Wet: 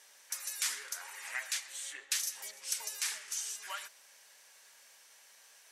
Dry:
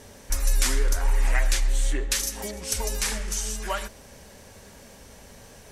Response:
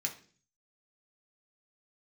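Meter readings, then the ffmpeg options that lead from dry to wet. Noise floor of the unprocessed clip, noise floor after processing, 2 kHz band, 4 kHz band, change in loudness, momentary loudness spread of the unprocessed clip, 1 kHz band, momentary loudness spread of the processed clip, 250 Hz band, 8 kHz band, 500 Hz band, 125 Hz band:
-49 dBFS, -61 dBFS, -8.0 dB, -7.0 dB, -10.0 dB, 7 LU, -13.5 dB, 9 LU, under -35 dB, -7.0 dB, -24.5 dB, under -40 dB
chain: -af "highpass=1.4k,volume=-7dB"

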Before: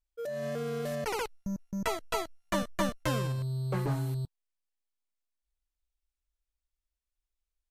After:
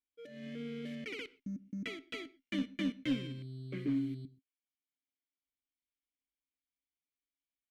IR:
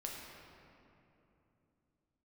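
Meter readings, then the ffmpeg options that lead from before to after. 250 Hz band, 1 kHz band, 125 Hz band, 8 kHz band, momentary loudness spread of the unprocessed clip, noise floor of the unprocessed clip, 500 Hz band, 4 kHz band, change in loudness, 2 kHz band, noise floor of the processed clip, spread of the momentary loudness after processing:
0.0 dB, -23.0 dB, -12.0 dB, under -15 dB, 6 LU, under -85 dBFS, -13.5 dB, -4.5 dB, -6.0 dB, -5.5 dB, under -85 dBFS, 11 LU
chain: -filter_complex "[0:a]asplit=3[a][b][c];[a]bandpass=f=270:t=q:w=8,volume=0dB[d];[b]bandpass=f=2.29k:t=q:w=8,volume=-6dB[e];[c]bandpass=f=3.01k:t=q:w=8,volume=-9dB[f];[d][e][f]amix=inputs=3:normalize=0,aeval=exprs='0.0266*(cos(1*acos(clip(val(0)/0.0266,-1,1)))-cos(1*PI/2))+0.00376*(cos(2*acos(clip(val(0)/0.0266,-1,1)))-cos(2*PI/2))+0.00119*(cos(4*acos(clip(val(0)/0.0266,-1,1)))-cos(4*PI/2))':c=same,asplit=2[g][h];[1:a]atrim=start_sample=2205,atrim=end_sample=6174[i];[h][i]afir=irnorm=-1:irlink=0,volume=-11dB[j];[g][j]amix=inputs=2:normalize=0,volume=6.5dB"

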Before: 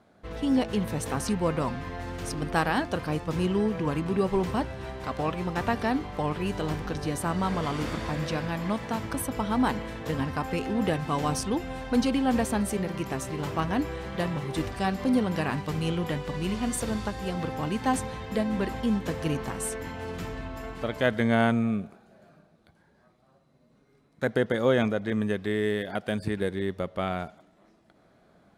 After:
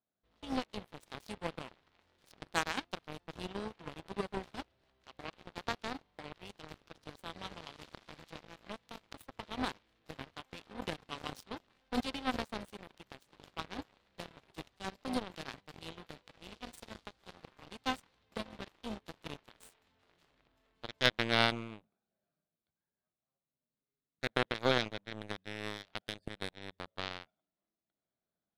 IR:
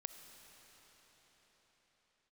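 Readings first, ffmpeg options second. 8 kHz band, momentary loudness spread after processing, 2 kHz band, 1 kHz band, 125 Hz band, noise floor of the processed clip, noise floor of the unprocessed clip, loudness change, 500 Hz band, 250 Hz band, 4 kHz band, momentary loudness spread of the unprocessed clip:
-15.0 dB, 19 LU, -6.5 dB, -11.0 dB, -17.5 dB, under -85 dBFS, -63 dBFS, -10.5 dB, -13.5 dB, -16.5 dB, -1.0 dB, 8 LU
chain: -af "aeval=exprs='0.355*(cos(1*acos(clip(val(0)/0.355,-1,1)))-cos(1*PI/2))+0.1*(cos(3*acos(clip(val(0)/0.355,-1,1)))-cos(3*PI/2))+0.00891*(cos(7*acos(clip(val(0)/0.355,-1,1)))-cos(7*PI/2))':c=same,equalizer=f=3.8k:t=o:w=1.1:g=7.5"

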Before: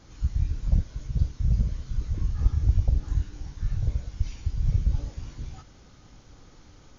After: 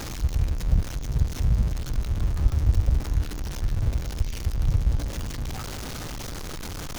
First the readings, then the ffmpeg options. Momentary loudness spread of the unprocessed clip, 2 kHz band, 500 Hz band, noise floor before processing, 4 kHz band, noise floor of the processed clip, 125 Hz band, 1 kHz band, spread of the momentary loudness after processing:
12 LU, +12.5 dB, +10.0 dB, -52 dBFS, +12.5 dB, -34 dBFS, +1.5 dB, +12.0 dB, 10 LU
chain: -af "aeval=exprs='val(0)+0.5*0.0376*sgn(val(0))':c=same"

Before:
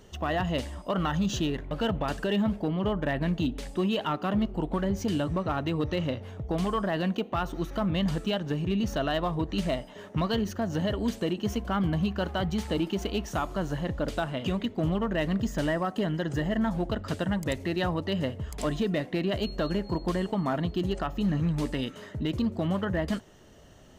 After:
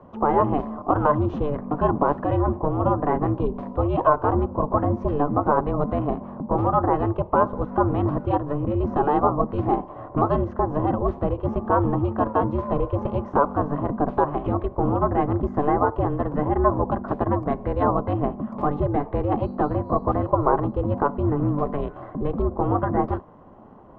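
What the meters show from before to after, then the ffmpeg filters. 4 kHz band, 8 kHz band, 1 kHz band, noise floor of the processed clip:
under -15 dB, under -30 dB, +12.0 dB, -42 dBFS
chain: -af "afreqshift=-72,lowpass=f=850:t=q:w=4.9,aeval=exprs='val(0)*sin(2*PI*220*n/s)':c=same,volume=7dB"

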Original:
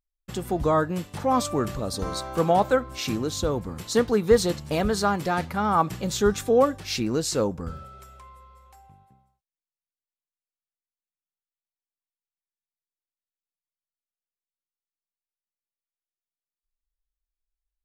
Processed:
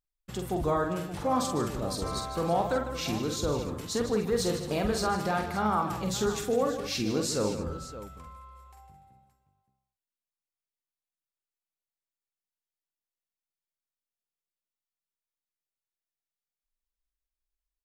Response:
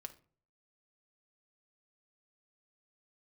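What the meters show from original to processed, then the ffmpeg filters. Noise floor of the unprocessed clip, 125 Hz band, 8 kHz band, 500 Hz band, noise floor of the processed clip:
under -85 dBFS, -4.0 dB, -3.0 dB, -6.0 dB, under -85 dBFS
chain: -filter_complex "[0:a]alimiter=limit=-15dB:level=0:latency=1:release=55,asplit=2[a][b];[b]aecho=0:1:47|152|217|292|571:0.531|0.299|0.188|0.112|0.2[c];[a][c]amix=inputs=2:normalize=0,volume=-4.5dB"

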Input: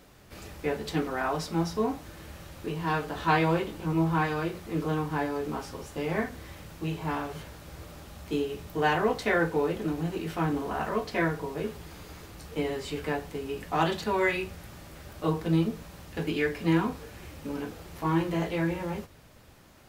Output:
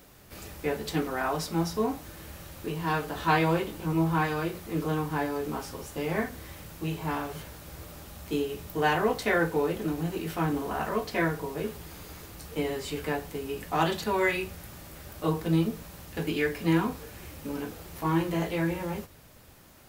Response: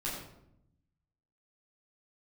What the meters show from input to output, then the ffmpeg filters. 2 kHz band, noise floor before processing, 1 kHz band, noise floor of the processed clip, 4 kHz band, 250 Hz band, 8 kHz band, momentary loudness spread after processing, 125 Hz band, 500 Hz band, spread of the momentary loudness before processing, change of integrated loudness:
+0.5 dB, -54 dBFS, 0.0 dB, -53 dBFS, +1.0 dB, 0.0 dB, +4.0 dB, 18 LU, 0.0 dB, 0.0 dB, 19 LU, 0.0 dB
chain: -af "highshelf=f=10k:g=11.5"

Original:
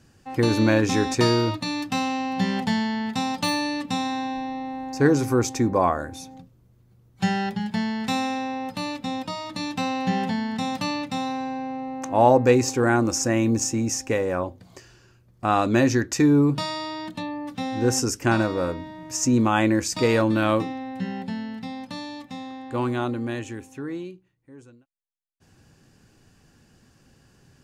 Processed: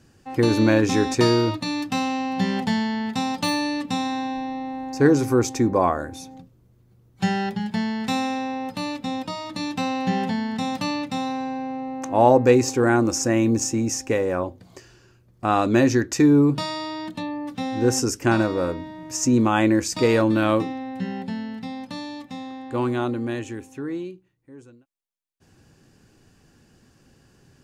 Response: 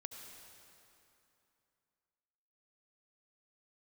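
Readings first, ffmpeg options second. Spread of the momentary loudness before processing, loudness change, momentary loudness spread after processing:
13 LU, +1.5 dB, 13 LU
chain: -af "equalizer=f=360:t=o:w=1:g=3"

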